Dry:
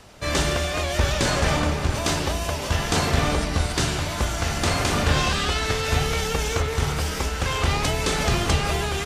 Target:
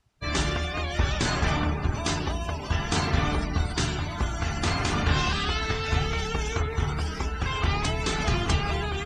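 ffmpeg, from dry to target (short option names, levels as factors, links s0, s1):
-af "afftdn=nr=23:nf=-32,equalizer=f=540:w=4.2:g=-11,volume=0.75"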